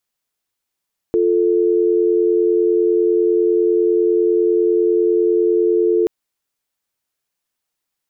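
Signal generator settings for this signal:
call progress tone dial tone, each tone −15 dBFS 4.93 s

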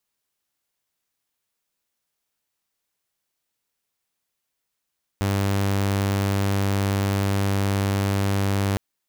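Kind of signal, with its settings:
tone saw 98.9 Hz −17.5 dBFS 3.56 s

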